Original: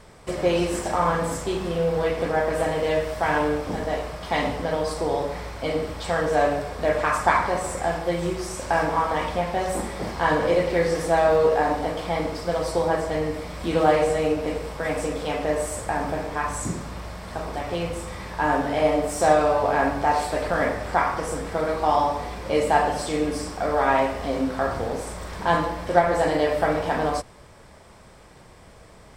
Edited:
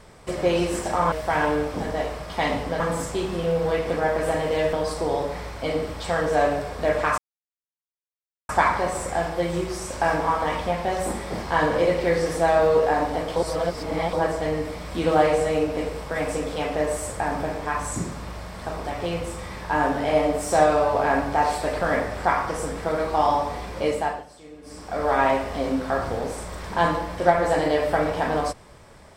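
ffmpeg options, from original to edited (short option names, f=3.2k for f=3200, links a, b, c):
-filter_complex "[0:a]asplit=9[a][b][c][d][e][f][g][h][i];[a]atrim=end=1.122[j];[b]atrim=start=3.048:end=4.732[k];[c]atrim=start=1.118:end=3.052[l];[d]atrim=start=4.728:end=7.18,asetpts=PTS-STARTPTS,afade=t=out:st=2.448:d=0.004:c=hsin,apad=pad_dur=1.31[m];[e]atrim=start=7.18:end=12.052,asetpts=PTS-STARTPTS,afade=t=in:d=0.004:c=hsin[n];[f]atrim=start=12.048:end=12.822,asetpts=PTS-STARTPTS,areverse[o];[g]atrim=start=12.818:end=22.95,asetpts=PTS-STARTPTS,afade=t=out:st=9.652:d=0.48:silence=0.105925[p];[h]atrim=start=22.95:end=23.31,asetpts=PTS-STARTPTS,volume=-19.5dB[q];[i]atrim=start=23.31,asetpts=PTS-STARTPTS,afade=t=in:d=0.48:silence=0.105925[r];[j][k]acrossfade=d=0.004:c1=hsin:c2=hsin[s];[s][l]acrossfade=d=0.004:c1=hsin:c2=hsin[t];[m][n]concat=n=2:v=0:a=1[u];[t][u]acrossfade=d=0.004:c1=hsin:c2=hsin[v];[v][o]acrossfade=d=0.004:c1=hsin:c2=hsin[w];[p][q][r]concat=n=3:v=0:a=1[x];[w][x]acrossfade=d=0.004:c1=hsin:c2=hsin"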